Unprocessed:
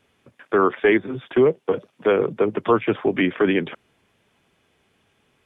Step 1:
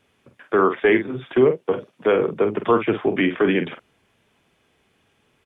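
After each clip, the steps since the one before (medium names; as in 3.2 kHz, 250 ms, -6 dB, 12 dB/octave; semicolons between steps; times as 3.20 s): doubling 47 ms -9 dB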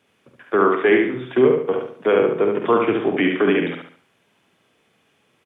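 high-pass 130 Hz 12 dB/octave; feedback delay 71 ms, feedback 37%, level -4 dB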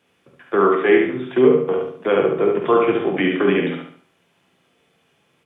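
simulated room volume 160 m³, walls furnished, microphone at 0.81 m; trim -1 dB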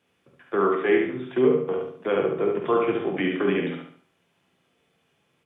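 bass shelf 120 Hz +4 dB; trim -6.5 dB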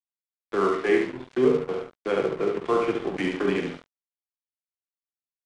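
crossover distortion -35.5 dBFS; resampled via 22.05 kHz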